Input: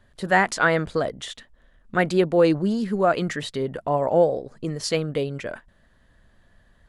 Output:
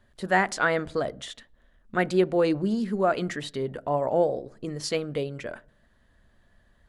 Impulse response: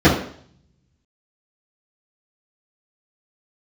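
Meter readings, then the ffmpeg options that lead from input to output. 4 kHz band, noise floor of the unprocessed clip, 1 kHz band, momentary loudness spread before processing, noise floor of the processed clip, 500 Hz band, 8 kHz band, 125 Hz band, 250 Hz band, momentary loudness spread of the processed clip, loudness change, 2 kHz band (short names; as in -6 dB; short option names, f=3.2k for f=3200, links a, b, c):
-4.0 dB, -59 dBFS, -3.5 dB, 14 LU, -63 dBFS, -4.0 dB, -4.0 dB, -5.0 dB, -3.5 dB, 14 LU, -4.0 dB, -4.0 dB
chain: -filter_complex "[0:a]asplit=2[a][b];[1:a]atrim=start_sample=2205,asetrate=48510,aresample=44100[c];[b][c]afir=irnorm=-1:irlink=0,volume=-44dB[d];[a][d]amix=inputs=2:normalize=0,volume=-4dB"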